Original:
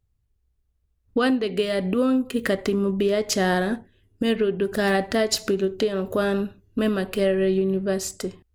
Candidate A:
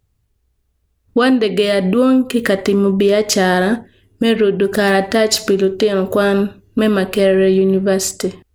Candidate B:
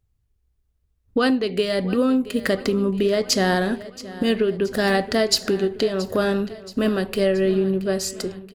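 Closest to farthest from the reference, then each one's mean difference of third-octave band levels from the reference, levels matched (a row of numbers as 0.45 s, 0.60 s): A, B; 1.0 dB, 2.0 dB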